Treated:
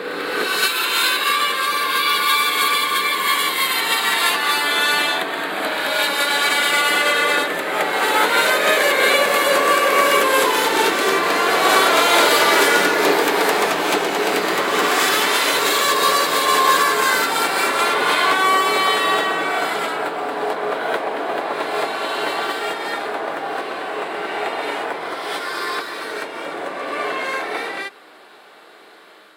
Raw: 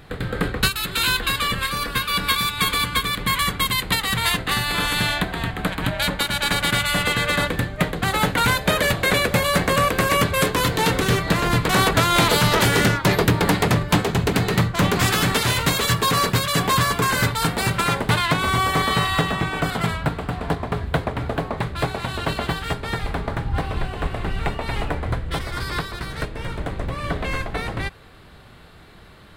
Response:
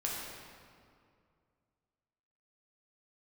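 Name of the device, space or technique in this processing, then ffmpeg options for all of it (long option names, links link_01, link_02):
ghost voice: -filter_complex "[0:a]areverse[link_01];[1:a]atrim=start_sample=2205[link_02];[link_01][link_02]afir=irnorm=-1:irlink=0,areverse,highpass=frequency=330:width=0.5412,highpass=frequency=330:width=1.3066,volume=1dB"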